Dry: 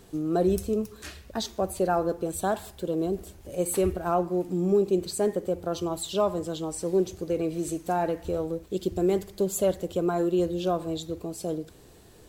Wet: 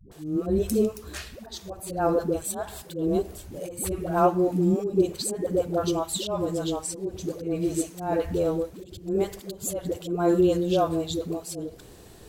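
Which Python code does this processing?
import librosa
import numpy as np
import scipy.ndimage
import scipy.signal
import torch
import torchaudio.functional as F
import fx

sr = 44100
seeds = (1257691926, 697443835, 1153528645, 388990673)

y = fx.auto_swell(x, sr, attack_ms=245.0)
y = fx.dispersion(y, sr, late='highs', ms=116.0, hz=370.0)
y = y * 10.0 ** (4.5 / 20.0)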